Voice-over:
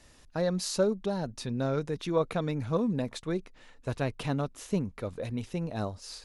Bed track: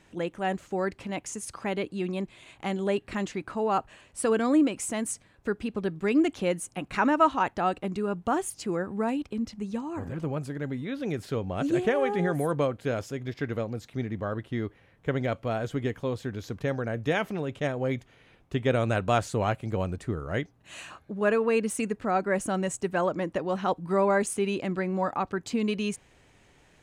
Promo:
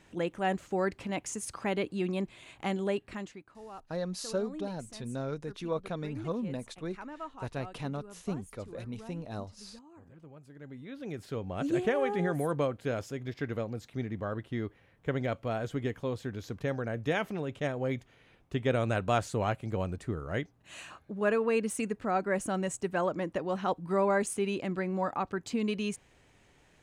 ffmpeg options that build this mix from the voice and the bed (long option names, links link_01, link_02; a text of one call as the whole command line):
ffmpeg -i stem1.wav -i stem2.wav -filter_complex "[0:a]adelay=3550,volume=-6dB[link_01];[1:a]volume=16dB,afade=type=out:start_time=2.63:duration=0.84:silence=0.105925,afade=type=in:start_time=10.42:duration=1.34:silence=0.141254[link_02];[link_01][link_02]amix=inputs=2:normalize=0" out.wav